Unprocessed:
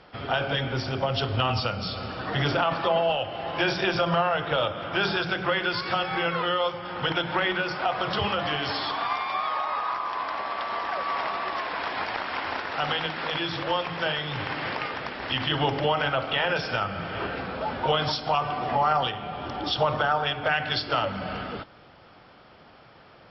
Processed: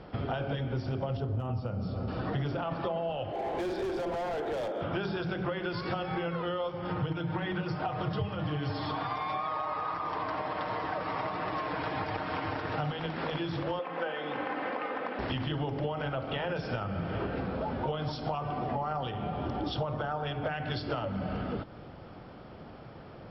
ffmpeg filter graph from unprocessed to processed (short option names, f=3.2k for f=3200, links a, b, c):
-filter_complex "[0:a]asettb=1/sr,asplit=3[a][b][c];[a]atrim=end=1.174[d];[b]atrim=start=1.17:end=2.08,asetpts=PTS-STARTPTS,afade=t=in:d=0.004:c=qsin,afade=t=out:st=0.906:d=0.004:c=qsin,asoftclip=type=hard:threshold=-15dB,highpass=56,equalizer=f=3.6k:t=o:w=2.5:g=-12.5[e];[c]atrim=start=2.076[f];[d][e]acrossfade=d=0.004:c1=hsin:c2=qsin[g];[g][f]acrossfade=d=0.004:c1=qsin:c2=hsin,asettb=1/sr,asplit=3[h][i][j];[h]atrim=end=3.324[k];[i]atrim=start=3.32:end=4.81,asetpts=PTS-STARTPTS,afade=t=in:d=0.004:c=qsin,afade=t=out:st=1.486:d=0.004:c=qsin,highpass=f=290:w=0.5412,highpass=f=290:w=1.3066,equalizer=f=400:t=q:w=4:g=8,equalizer=f=790:t=q:w=4:g=5,equalizer=f=1.2k:t=q:w=4:g=-9,equalizer=f=2.8k:t=q:w=4:g=-8,lowpass=f=4.4k:w=0.5412,lowpass=f=4.4k:w=1.3066,volume=29.5dB,asoftclip=hard,volume=-29.5dB[l];[j]atrim=start=4.806[m];[k][l]acrossfade=d=0.004:c1=hsin:c2=qsin[n];[n][m]acrossfade=d=0.004:c1=qsin:c2=hsin,asettb=1/sr,asplit=3[o][p][q];[o]atrim=end=6.894[r];[p]atrim=start=6.89:end=12.91,asetpts=PTS-STARTPTS,afade=t=in:d=0.004:c=qsin,afade=t=out:st=6.016:d=0.004:c=qsin,highpass=42,equalizer=f=94:t=o:w=0.84:g=13,aecho=1:1:6.5:0.67,atrim=end_sample=265482[s];[q]atrim=start=12.906[t];[r][s]acrossfade=d=0.004:c1=hsin:c2=qsin[u];[u][t]acrossfade=d=0.004:c1=qsin:c2=hsin,asettb=1/sr,asplit=3[v][w][x];[v]atrim=end=13.794[y];[w]atrim=start=13.79:end=15.19,asetpts=PTS-STARTPTS,afade=t=in:d=0.004:c=qsin,afade=t=out:st=1.396:d=0.004:c=qsin,highpass=380,lowpass=2.4k,aecho=1:1:3.9:0.52,atrim=end_sample=61740[z];[x]atrim=start=15.186[aa];[y][z]acrossfade=d=0.004:c1=hsin:c2=qsin[ab];[ab][aa]acrossfade=d=0.004:c1=qsin:c2=hsin,tiltshelf=f=730:g=7.5,acompressor=threshold=-33dB:ratio=6,volume=2.5dB"